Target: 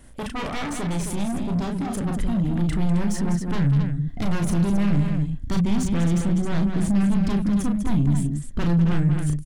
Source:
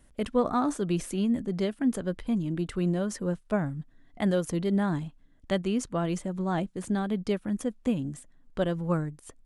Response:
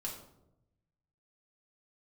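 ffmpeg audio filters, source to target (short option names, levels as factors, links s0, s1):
-filter_complex "[0:a]aeval=exprs='0.2*sin(PI/2*3.98*val(0)/0.2)':c=same,alimiter=limit=0.133:level=0:latency=1:release=113,asplit=2[s0][s1];[s1]aecho=0:1:34.99|198.3|265.3:0.631|0.398|0.398[s2];[s0][s2]amix=inputs=2:normalize=0,asoftclip=type=tanh:threshold=0.119,asubboost=boost=5.5:cutoff=230,volume=0.501"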